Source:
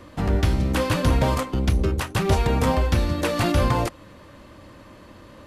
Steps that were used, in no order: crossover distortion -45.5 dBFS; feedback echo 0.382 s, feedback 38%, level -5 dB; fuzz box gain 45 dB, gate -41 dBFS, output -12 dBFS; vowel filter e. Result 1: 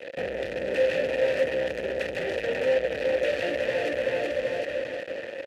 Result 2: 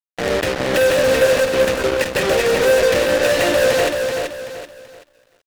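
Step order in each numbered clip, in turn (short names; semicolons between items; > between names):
feedback echo > fuzz box > crossover distortion > vowel filter; vowel filter > fuzz box > feedback echo > crossover distortion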